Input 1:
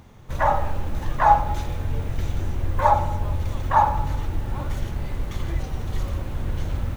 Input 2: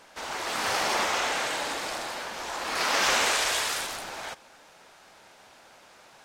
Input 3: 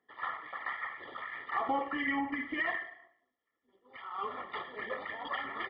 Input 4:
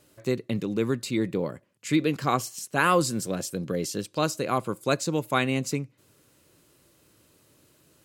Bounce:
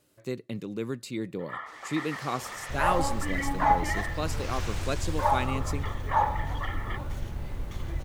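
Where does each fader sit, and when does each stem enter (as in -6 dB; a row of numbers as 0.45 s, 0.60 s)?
-7.0 dB, -17.0 dB, -0.5 dB, -7.0 dB; 2.40 s, 1.50 s, 1.30 s, 0.00 s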